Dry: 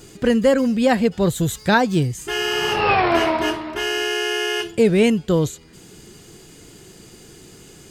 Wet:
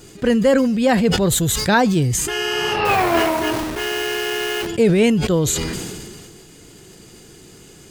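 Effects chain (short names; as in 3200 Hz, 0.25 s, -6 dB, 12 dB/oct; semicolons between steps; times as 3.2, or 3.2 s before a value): 2.85–4.67 level-crossing sampler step -25 dBFS; sustainer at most 28 dB/s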